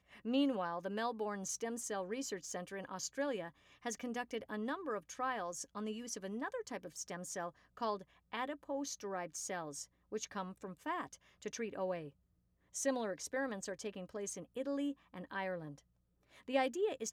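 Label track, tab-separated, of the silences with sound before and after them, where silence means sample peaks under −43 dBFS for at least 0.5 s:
12.080000	12.750000	silence
15.720000	16.490000	silence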